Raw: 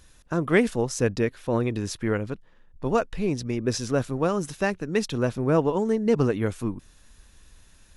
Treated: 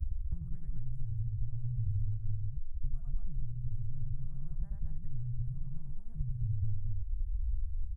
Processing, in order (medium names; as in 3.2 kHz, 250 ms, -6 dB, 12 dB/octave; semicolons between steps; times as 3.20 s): local Wiener filter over 41 samples; bass shelf 200 Hz +9.5 dB; loudspeakers at several distances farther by 31 m -1 dB, 77 m -2 dB; compression, threshold -21 dBFS, peak gain reduction 10.5 dB; inverse Chebyshev band-stop 200–5500 Hz, stop band 50 dB; tape spacing loss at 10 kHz 21 dB; three bands compressed up and down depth 100%; trim +5.5 dB